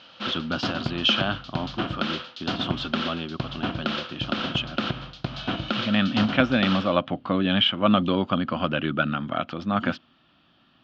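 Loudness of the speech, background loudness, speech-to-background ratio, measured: −26.0 LKFS, −30.5 LKFS, 4.5 dB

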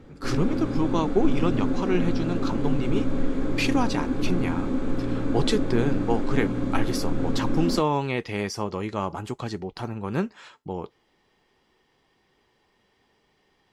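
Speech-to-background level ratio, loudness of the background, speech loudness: −0.5 dB, −28.0 LKFS, −28.5 LKFS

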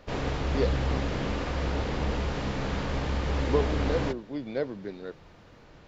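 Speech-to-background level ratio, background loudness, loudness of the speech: −2.5 dB, −30.5 LKFS, −33.0 LKFS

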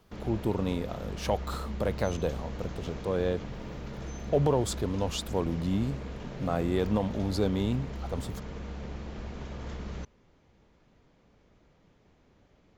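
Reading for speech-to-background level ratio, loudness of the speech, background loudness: 8.5 dB, −31.5 LKFS, −40.0 LKFS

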